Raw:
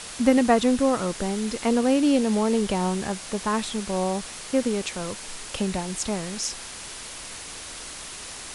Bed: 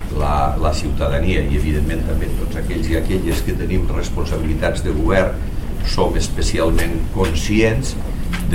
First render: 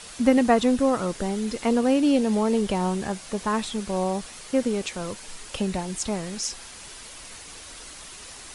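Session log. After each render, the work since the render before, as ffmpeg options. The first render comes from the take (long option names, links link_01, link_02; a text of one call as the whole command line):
ffmpeg -i in.wav -af "afftdn=noise_reduction=6:noise_floor=-39" out.wav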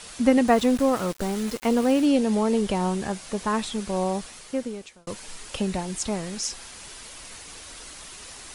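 ffmpeg -i in.wav -filter_complex "[0:a]asettb=1/sr,asplit=3[link_01][link_02][link_03];[link_01]atrim=end=0.484[link_04];[link_02]atrim=start=0.48:end=2.06,asetpts=PTS-STARTPTS,afade=type=in:duration=0.004:curve=qsin,afade=type=out:start_time=1.576:duration=0.004:curve=qsin,aeval=exprs='val(0)*gte(abs(val(0)),0.0224)':channel_layout=same[link_05];[link_03]atrim=start=2.056[link_06];[link_04][link_05]acrossfade=duration=0.004:curve1=hsin:curve2=qsin[link_07];[link_07][link_06]acrossfade=duration=0.004:curve1=qsin:curve2=hsin,asplit=2[link_08][link_09];[link_08]atrim=end=5.07,asetpts=PTS-STARTPTS,afade=type=out:start_time=4.17:duration=0.9[link_10];[link_09]atrim=start=5.07,asetpts=PTS-STARTPTS,afade=type=in:duration=0.004:curve=hsin[link_11];[link_10][link_11]concat=n=2:v=0:a=1" out.wav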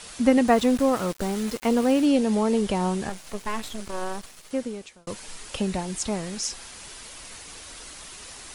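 ffmpeg -i in.wav -filter_complex "[0:a]asettb=1/sr,asplit=3[link_01][link_02][link_03];[link_01]atrim=end=3.094[link_04];[link_02]atrim=start=3.09:end=4.51,asetpts=PTS-STARTPTS,afade=type=in:duration=0.004:curve=qsin,afade=type=out:start_time=1.416:duration=0.004:curve=qsin,aeval=exprs='max(val(0),0)':channel_layout=same[link_05];[link_03]atrim=start=4.506[link_06];[link_04][link_05]acrossfade=duration=0.004:curve1=hsin:curve2=qsin[link_07];[link_07][link_06]acrossfade=duration=0.004:curve1=qsin:curve2=hsin" out.wav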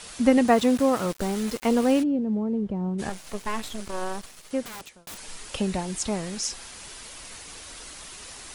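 ffmpeg -i in.wav -filter_complex "[0:a]asettb=1/sr,asplit=3[link_01][link_02][link_03];[link_01]atrim=end=0.454[link_04];[link_02]atrim=start=0.45:end=1.06,asetpts=PTS-STARTPTS,afade=type=in:duration=0.004:curve=qsin,afade=type=out:start_time=0.606:duration=0.004:curve=qsin,highpass=62[link_05];[link_03]atrim=start=1.056[link_06];[link_04][link_05]acrossfade=duration=0.004:curve1=hsin:curve2=qsin[link_07];[link_07][link_06]acrossfade=duration=0.004:curve1=qsin:curve2=hsin,asplit=3[link_08][link_09][link_10];[link_08]afade=type=out:start_time=2.02:duration=0.02[link_11];[link_09]bandpass=frequency=140:width_type=q:width=0.83,afade=type=in:start_time=2.02:duration=0.02,afade=type=out:start_time=2.98:duration=0.02[link_12];[link_10]afade=type=in:start_time=2.98:duration=0.02[link_13];[link_11][link_12][link_13]amix=inputs=3:normalize=0,asettb=1/sr,asplit=3[link_14][link_15][link_16];[link_14]atrim=end=4.654[link_17];[link_15]atrim=start=4.65:end=5.18,asetpts=PTS-STARTPTS,afade=type=in:duration=0.004:curve=qsin,afade=type=out:start_time=0.526:duration=0.004:curve=qsin,aeval=exprs='(mod(50.1*val(0)+1,2)-1)/50.1':channel_layout=same[link_18];[link_16]atrim=start=5.176[link_19];[link_17][link_18]acrossfade=duration=0.004:curve1=hsin:curve2=qsin[link_20];[link_20][link_19]acrossfade=duration=0.004:curve1=qsin:curve2=hsin" out.wav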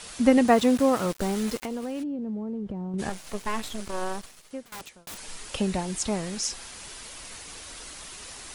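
ffmpeg -i in.wav -filter_complex "[0:a]asettb=1/sr,asplit=3[link_01][link_02][link_03];[link_01]atrim=end=1.574[link_04];[link_02]atrim=start=1.57:end=2.94,asetpts=PTS-STARTPTS,afade=type=in:duration=0.004:curve=qsin,afade=type=out:start_time=1.366:duration=0.004:curve=qsin,acompressor=threshold=-29dB:ratio=6:attack=3.2:release=140:knee=1:detection=peak[link_05];[link_03]atrim=start=2.936[link_06];[link_04][link_05]acrossfade=duration=0.004:curve1=hsin:curve2=qsin[link_07];[link_07][link_06]acrossfade=duration=0.004:curve1=qsin:curve2=hsin,asplit=2[link_08][link_09];[link_08]atrim=end=4.72,asetpts=PTS-STARTPTS,afade=type=out:start_time=4.12:duration=0.6:silence=0.112202[link_10];[link_09]atrim=start=4.72,asetpts=PTS-STARTPTS,afade=type=in:duration=0.004:curve=hsin:silence=0.112202[link_11];[link_10][link_11]concat=n=2:v=0:a=1" out.wav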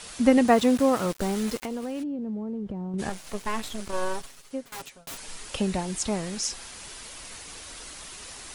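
ffmpeg -i in.wav -filter_complex "[0:a]asettb=1/sr,asplit=3[link_01][link_02][link_03];[link_01]atrim=end=3.924[link_04];[link_02]atrim=start=3.92:end=5.17,asetpts=PTS-STARTPTS,afade=type=in:duration=0.004:curve=qsin,afade=type=out:start_time=1.246:duration=0.004:curve=qsin,aecho=1:1:7.3:0.65,atrim=end_sample=55125[link_05];[link_03]atrim=start=5.166[link_06];[link_04][link_05]acrossfade=duration=0.004:curve1=hsin:curve2=qsin[link_07];[link_07][link_06]acrossfade=duration=0.004:curve1=qsin:curve2=hsin" out.wav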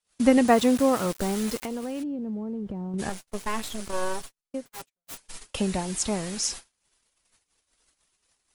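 ffmpeg -i in.wav -af "agate=range=-44dB:threshold=-37dB:ratio=16:detection=peak,highshelf=frequency=8700:gain=5.5" out.wav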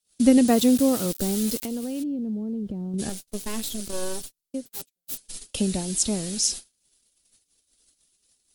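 ffmpeg -i in.wav -af "equalizer=frequency=250:width_type=o:width=1:gain=4,equalizer=frequency=1000:width_type=o:width=1:gain=-10,equalizer=frequency=2000:width_type=o:width=1:gain=-6,equalizer=frequency=4000:width_type=o:width=1:gain=4,equalizer=frequency=16000:width_type=o:width=1:gain=12" out.wav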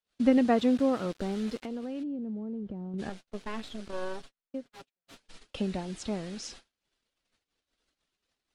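ffmpeg -i in.wav -af "lowpass=1400,tiltshelf=frequency=870:gain=-8" out.wav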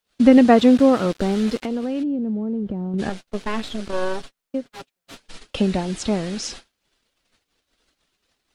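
ffmpeg -i in.wav -af "volume=11.5dB,alimiter=limit=-1dB:level=0:latency=1" out.wav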